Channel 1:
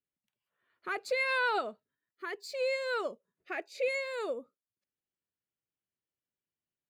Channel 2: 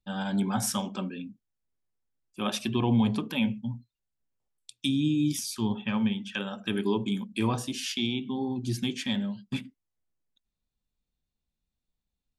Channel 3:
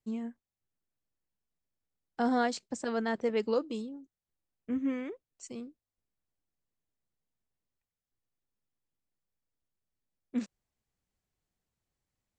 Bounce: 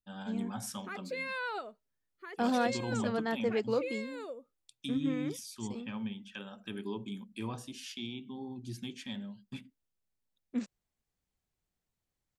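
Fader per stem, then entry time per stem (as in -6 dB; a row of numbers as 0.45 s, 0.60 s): -7.5 dB, -11.5 dB, -1.5 dB; 0.00 s, 0.00 s, 0.20 s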